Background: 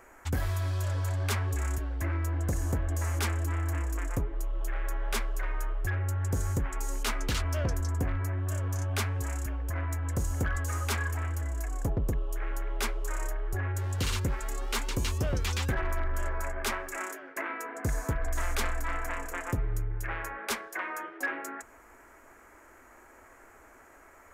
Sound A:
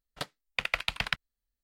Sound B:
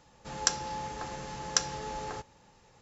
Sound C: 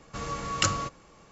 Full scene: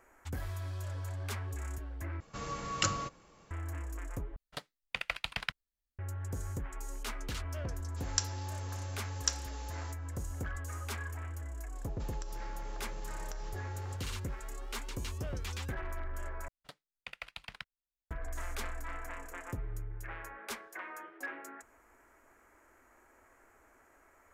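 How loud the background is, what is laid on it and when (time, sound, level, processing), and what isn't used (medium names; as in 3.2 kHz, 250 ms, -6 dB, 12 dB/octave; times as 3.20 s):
background -9 dB
2.20 s: replace with C -5.5 dB
4.36 s: replace with A -6 dB
7.71 s: add B -10.5 dB + tilt EQ +2.5 dB/octave
11.75 s: add B -3 dB + compression 12:1, threshold -42 dBFS
16.48 s: replace with A -15.5 dB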